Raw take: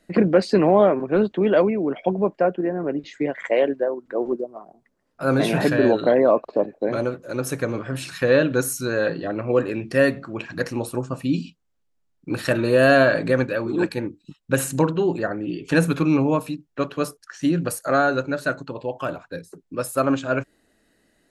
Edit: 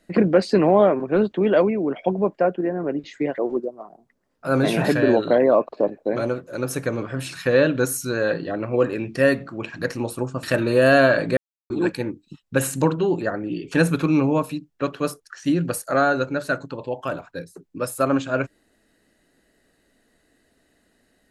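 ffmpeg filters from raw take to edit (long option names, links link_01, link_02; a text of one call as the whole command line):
ffmpeg -i in.wav -filter_complex "[0:a]asplit=5[link_01][link_02][link_03][link_04][link_05];[link_01]atrim=end=3.382[link_06];[link_02]atrim=start=4.138:end=11.192[link_07];[link_03]atrim=start=12.398:end=13.34,asetpts=PTS-STARTPTS,afade=type=out:start_time=0.938:duration=0.004:curve=hsin[link_08];[link_04]atrim=start=13.34:end=13.67,asetpts=PTS-STARTPTS,volume=0[link_09];[link_05]atrim=start=13.67,asetpts=PTS-STARTPTS,afade=type=in:duration=0.004:curve=hsin[link_10];[link_06][link_07]acrossfade=duration=0.004:curve1=hsin:curve2=hsin[link_11];[link_08][link_09][link_10]concat=n=3:v=0:a=1[link_12];[link_11][link_12]acrossfade=duration=0.004:curve1=hsin:curve2=hsin" out.wav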